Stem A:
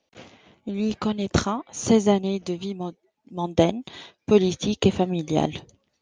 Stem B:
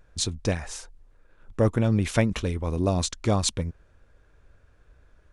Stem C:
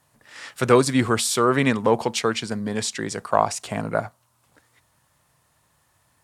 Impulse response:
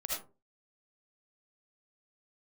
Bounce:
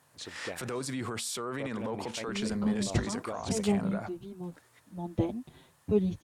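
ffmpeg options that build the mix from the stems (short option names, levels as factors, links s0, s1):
-filter_complex "[0:a]aemphasis=mode=reproduction:type=riaa,asplit=2[s0][s1];[s1]adelay=6.7,afreqshift=0.87[s2];[s0][s2]amix=inputs=2:normalize=1,adelay=1600,volume=0.237[s3];[1:a]bass=f=250:g=-15,treble=f=4000:g=-14,volume=0.447[s4];[2:a]acompressor=threshold=0.0708:ratio=6,volume=0.891[s5];[s4][s5]amix=inputs=2:normalize=0,highpass=100,alimiter=level_in=1.33:limit=0.0631:level=0:latency=1:release=29,volume=0.75,volume=1[s6];[s3][s6]amix=inputs=2:normalize=0"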